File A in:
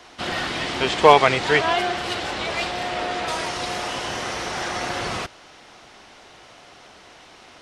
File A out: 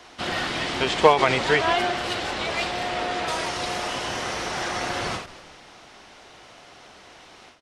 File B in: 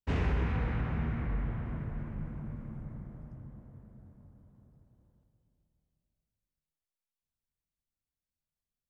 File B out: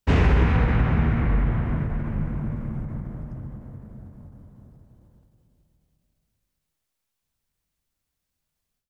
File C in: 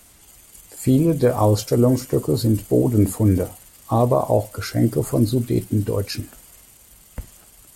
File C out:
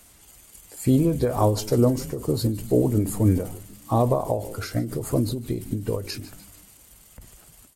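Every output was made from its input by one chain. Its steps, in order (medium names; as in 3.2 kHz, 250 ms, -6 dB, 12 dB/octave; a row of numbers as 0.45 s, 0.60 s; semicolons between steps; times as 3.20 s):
frequency-shifting echo 148 ms, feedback 48%, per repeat -100 Hz, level -17.5 dB; endings held to a fixed fall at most 110 dB/s; normalise loudness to -24 LUFS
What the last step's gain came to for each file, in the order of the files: -1.0 dB, +12.0 dB, -2.5 dB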